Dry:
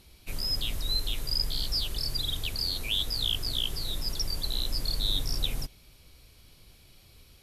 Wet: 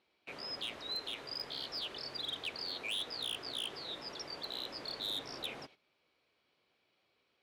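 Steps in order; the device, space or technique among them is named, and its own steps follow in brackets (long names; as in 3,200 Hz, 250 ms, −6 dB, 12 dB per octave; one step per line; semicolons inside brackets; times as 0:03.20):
walkie-talkie (band-pass filter 400–2,500 Hz; hard clipping −34 dBFS, distortion −12 dB; noise gate −58 dBFS, range −12 dB)
level +1 dB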